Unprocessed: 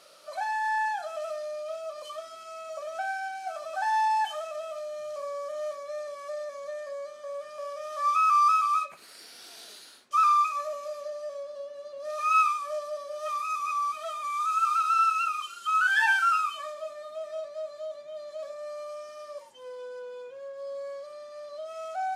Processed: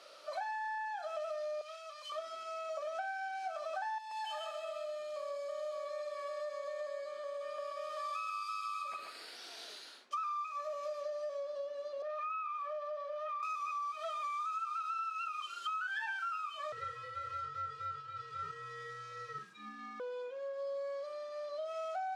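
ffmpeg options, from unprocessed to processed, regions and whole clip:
-filter_complex "[0:a]asettb=1/sr,asplit=3[s0][s1][s2];[s0]atrim=end=1.614[s3];[s1]atrim=start=1.61:end=2.12,asetpts=PTS-STARTPTS,afade=t=in:d=0.004:c=qsin,afade=t=out:st=0.506:d=0.004:c=qsin,highpass=1500,aeval=exprs='val(0)+0.000141*(sin(2*PI*50*n/s)+sin(2*PI*2*50*n/s)/2+sin(2*PI*3*50*n/s)/3+sin(2*PI*4*50*n/s)/4+sin(2*PI*5*50*n/s)/5)':c=same[s4];[s2]atrim=start=2.116[s5];[s3][s4]acrossfade=d=0.004:c1=hsin:c2=qsin[s6];[s6][s5]acrossfade=d=0.004:c1=qsin:c2=hsin,asettb=1/sr,asplit=3[s7][s8][s9];[s7]atrim=end=3.984[s10];[s8]atrim=start=3.98:end=9.36,asetpts=PTS-STARTPTS,afade=t=in:d=0.004:c=qsin,afade=t=out:st=5.376:d=0.004:c=qsin,bandreject=f=5800:w=5.1,acrossover=split=130|3000[s11][s12][s13];[s12]acompressor=threshold=0.01:ratio=4:attack=3.2:release=140:knee=2.83:detection=peak[s14];[s11][s14][s13]amix=inputs=3:normalize=0,aecho=1:1:132|264|396|528:0.668|0.194|0.0562|0.0163,atrim=end_sample=237258[s15];[s9]atrim=start=9.356[s16];[s10][s15]acrossfade=d=0.004:c1=hsin:c2=qsin[s17];[s17][s16]acrossfade=d=0.004:c1=qsin:c2=hsin,asettb=1/sr,asplit=3[s18][s19][s20];[s18]atrim=end=12.024[s21];[s19]atrim=start=12.02:end=13.43,asetpts=PTS-STARTPTS,afade=t=in:d=0.004:c=qsin,afade=t=out:st=1.406:d=0.004:c=qsin,acrossover=split=470 3100:gain=0.224 1 0.126[s22][s23][s24];[s22][s23][s24]amix=inputs=3:normalize=0,acompressor=threshold=0.0158:ratio=3:attack=3.2:release=140:knee=1:detection=peak[s25];[s20]atrim=start=13.426[s26];[s21][s25]acrossfade=d=0.004:c1=hsin:c2=qsin[s27];[s27][s26]acrossfade=d=0.004:c1=qsin:c2=hsin,asettb=1/sr,asplit=3[s28][s29][s30];[s28]atrim=end=16.724[s31];[s29]atrim=start=16.72:end=20,asetpts=PTS-STARTPTS,afade=t=in:d=0.004:c=qsin,afade=t=out:st=3.276:d=0.004:c=qsin,aeval=exprs='val(0)*sin(2*PI*720*n/s)':c=same,asplit=2[s32][s33];[s33]adelay=43,volume=0.501[s34];[s32][s34]amix=inputs=2:normalize=0,atrim=end_sample=144648[s35];[s30]atrim=start=19.996[s36];[s31][s35]acrossfade=d=0.004:c1=hsin:c2=qsin[s37];[s37][s36]acrossfade=d=0.004:c1=qsin:c2=hsin,acrossover=split=240 5800:gain=0.126 1 0.251[s38][s39][s40];[s38][s39][s40]amix=inputs=3:normalize=0,acompressor=threshold=0.0158:ratio=12"

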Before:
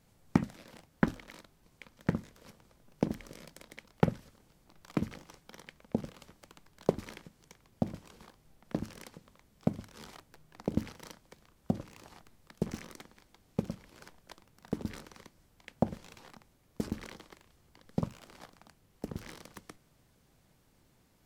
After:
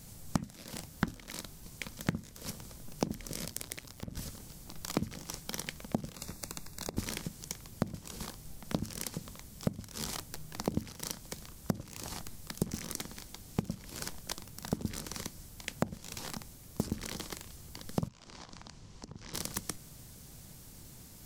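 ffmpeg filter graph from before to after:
-filter_complex "[0:a]asettb=1/sr,asplit=3[s0][s1][s2];[s0]atrim=end=3.454[s3];[s1]atrim=start=3.45:end=4.17,asetpts=PTS-STARTPTS,afade=t=in:d=0.004:c=qsin,afade=t=out:st=0.716:d=0.004:c=qsin,acompressor=threshold=0.00501:ratio=12:attack=3.2:release=140:knee=1:detection=peak,aeval=exprs='val(0)*sin(2*PI*62*n/s)':c=same[s4];[s2]atrim=start=4.166[s5];[s3][s4]acrossfade=d=0.004:c1=hsin:c2=qsin[s6];[s6][s5]acrossfade=d=0.004:c1=qsin:c2=hsin,asettb=1/sr,asplit=3[s7][s8][s9];[s7]atrim=end=6.154[s10];[s8]atrim=start=6.15:end=6.97,asetpts=PTS-STARTPTS,afade=t=in:d=0.004:c=qsin,afade=t=out:st=0.816:d=0.004:c=qsin,acompressor=threshold=0.00631:ratio=20:attack=3.2:release=140:knee=1:detection=peak,asuperstop=centerf=3100:order=12:qfactor=5.2[s11];[s9]atrim=start=6.966[s12];[s10][s11]acrossfade=d=0.004:c1=hsin:c2=qsin[s13];[s13][s12]acrossfade=d=0.004:c1=qsin:c2=hsin,asettb=1/sr,asplit=3[s14][s15][s16];[s14]atrim=end=18.084[s17];[s15]atrim=start=18.08:end=19.34,asetpts=PTS-STARTPTS,afade=t=in:d=0.004:c=qsin,afade=t=out:st=1.256:d=0.004:c=qsin,lowpass=f=6500:w=0.5412,lowpass=f=6500:w=1.3066,equalizer=f=1000:t=o:w=0.32:g=5.5,acompressor=threshold=0.00178:ratio=16:attack=3.2:release=140:knee=1:detection=peak[s18];[s16]atrim=start=19.336[s19];[s17][s18]acrossfade=d=0.004:c1=hsin:c2=qsin[s20];[s20][s19]acrossfade=d=0.004:c1=qsin:c2=hsin,bass=f=250:g=7,treble=f=4000:g=13,acompressor=threshold=0.01:ratio=5,volume=2.82"

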